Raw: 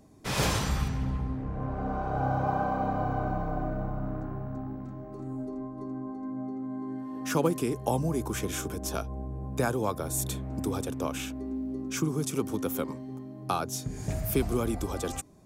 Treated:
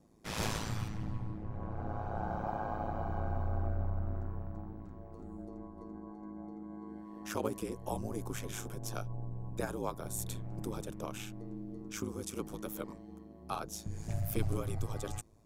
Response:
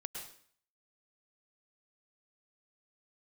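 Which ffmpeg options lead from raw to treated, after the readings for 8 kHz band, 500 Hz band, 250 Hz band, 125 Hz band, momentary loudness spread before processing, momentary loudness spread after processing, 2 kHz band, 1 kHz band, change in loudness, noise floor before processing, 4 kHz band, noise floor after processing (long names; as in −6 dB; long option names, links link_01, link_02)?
−8.5 dB, −9.0 dB, −10.0 dB, −5.5 dB, 9 LU, 11 LU, −9.0 dB, −9.0 dB, −8.0 dB, −42 dBFS, −8.5 dB, −51 dBFS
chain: -af "asubboost=boost=6:cutoff=57,aeval=exprs='val(0)*sin(2*PI*54*n/s)':channel_layout=same,volume=-5.5dB"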